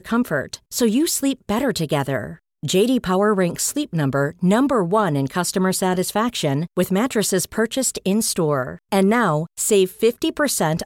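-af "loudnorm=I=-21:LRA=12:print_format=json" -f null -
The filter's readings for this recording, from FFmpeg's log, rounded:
"input_i" : "-19.9",
"input_tp" : "-6.2",
"input_lra" : "1.4",
"input_thresh" : "-30.0",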